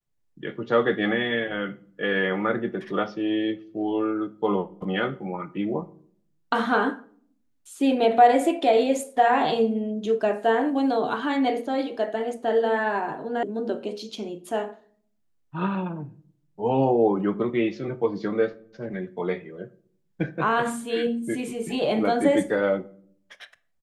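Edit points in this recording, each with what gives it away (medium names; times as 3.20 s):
13.43 s: sound stops dead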